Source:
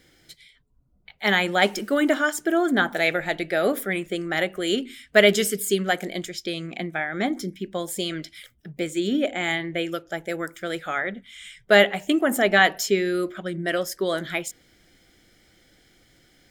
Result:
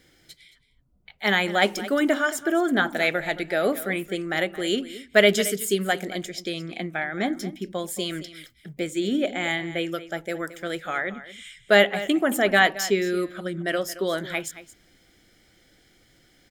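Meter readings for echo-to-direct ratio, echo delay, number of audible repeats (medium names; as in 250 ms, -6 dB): -15.5 dB, 222 ms, 1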